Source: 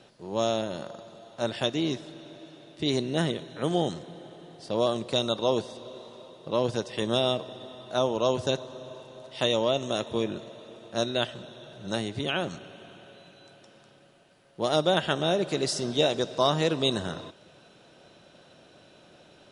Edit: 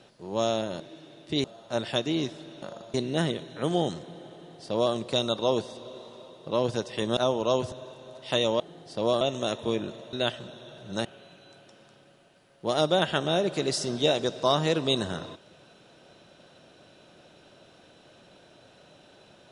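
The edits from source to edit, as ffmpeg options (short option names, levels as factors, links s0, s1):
-filter_complex "[0:a]asplit=11[s0][s1][s2][s3][s4][s5][s6][s7][s8][s9][s10];[s0]atrim=end=0.802[s11];[s1]atrim=start=2.298:end=2.942[s12];[s2]atrim=start=1.118:end=2.302[s13];[s3]atrim=start=0.798:end=1.122[s14];[s4]atrim=start=2.938:end=7.172[s15];[s5]atrim=start=7.918:end=8.472[s16];[s6]atrim=start=8.808:end=9.692[s17];[s7]atrim=start=4.328:end=4.942[s18];[s8]atrim=start=9.688:end=10.612[s19];[s9]atrim=start=11.078:end=12.002[s20];[s10]atrim=start=12.998[s21];[s11][s12]acrossfade=d=0.004:c1=hsin:c2=hsin[s22];[s22][s13]acrossfade=d=0.004:c1=hsin:c2=hsin[s23];[s23][s14]acrossfade=d=0.004:c1=hsin:c2=hsin[s24];[s24][s15]acrossfade=d=0.004:c1=hsin:c2=hsin[s25];[s25][s16]acrossfade=d=0.004:c1=hsin:c2=hsin[s26];[s26][s17]acrossfade=d=0.004:c1=hsin:c2=hsin[s27];[s27][s18]acrossfade=d=0.004:c1=hsin:c2=hsin[s28];[s28][s19]acrossfade=d=0.004:c1=hsin:c2=hsin[s29];[s29][s20]acrossfade=d=0.004:c1=hsin:c2=hsin[s30];[s30][s21]acrossfade=d=0.004:c1=hsin:c2=hsin"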